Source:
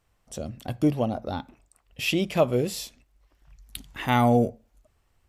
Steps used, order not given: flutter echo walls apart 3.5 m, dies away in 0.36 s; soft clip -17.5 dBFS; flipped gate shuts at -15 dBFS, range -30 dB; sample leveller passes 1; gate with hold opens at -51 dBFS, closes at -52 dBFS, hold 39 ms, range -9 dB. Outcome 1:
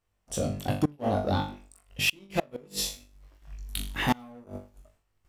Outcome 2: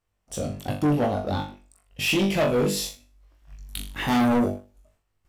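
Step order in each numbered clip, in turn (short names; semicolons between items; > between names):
soft clip > flutter echo > flipped gate > sample leveller > gate with hold; flutter echo > gate with hold > sample leveller > soft clip > flipped gate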